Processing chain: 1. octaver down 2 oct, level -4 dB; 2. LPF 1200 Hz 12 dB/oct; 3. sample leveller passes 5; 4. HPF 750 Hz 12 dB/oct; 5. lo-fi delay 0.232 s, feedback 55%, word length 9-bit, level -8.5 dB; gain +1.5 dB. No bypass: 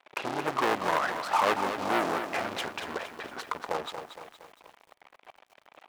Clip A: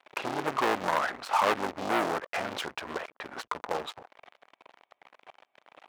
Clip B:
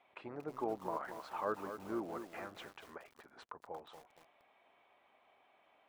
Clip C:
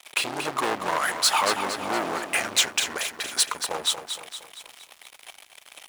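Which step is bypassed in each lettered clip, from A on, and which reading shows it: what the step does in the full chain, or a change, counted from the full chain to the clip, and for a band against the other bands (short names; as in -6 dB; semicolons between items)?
5, momentary loudness spread change -2 LU; 3, 250 Hz band +8.5 dB; 2, 8 kHz band +19.0 dB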